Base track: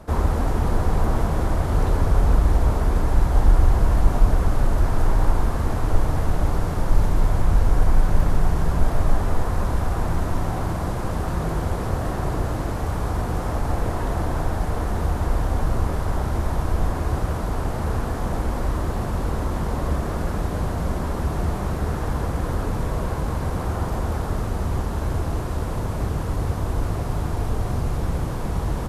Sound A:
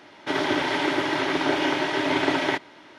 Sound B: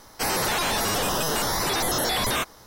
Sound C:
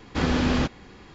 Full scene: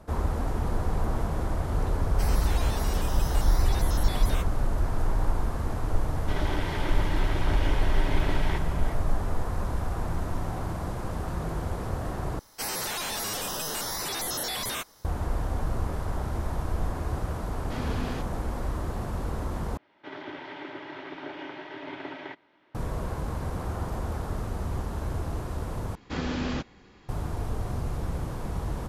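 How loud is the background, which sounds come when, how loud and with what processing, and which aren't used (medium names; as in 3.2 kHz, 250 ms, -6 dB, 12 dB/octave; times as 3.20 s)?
base track -7 dB
1.99 s: add B -13 dB
6.01 s: add A -11 dB + speakerphone echo 360 ms, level -8 dB
12.39 s: replace with B -10 dB + treble shelf 3.3 kHz +6.5 dB
17.55 s: add C -12 dB
19.77 s: replace with A -15.5 dB + low-pass 3.2 kHz
25.95 s: replace with C -7.5 dB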